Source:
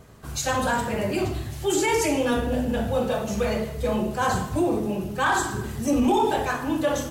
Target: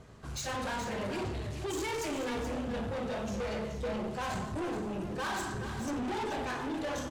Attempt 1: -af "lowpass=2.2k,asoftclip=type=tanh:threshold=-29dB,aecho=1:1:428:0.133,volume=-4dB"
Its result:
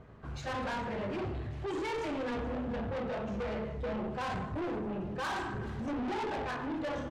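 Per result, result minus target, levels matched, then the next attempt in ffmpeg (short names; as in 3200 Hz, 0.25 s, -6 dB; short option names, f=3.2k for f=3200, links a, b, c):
8000 Hz band -12.0 dB; echo-to-direct -8.5 dB
-af "lowpass=7.1k,asoftclip=type=tanh:threshold=-29dB,aecho=1:1:428:0.133,volume=-4dB"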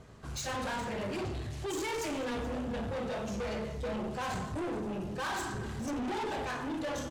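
echo-to-direct -8.5 dB
-af "lowpass=7.1k,asoftclip=type=tanh:threshold=-29dB,aecho=1:1:428:0.355,volume=-4dB"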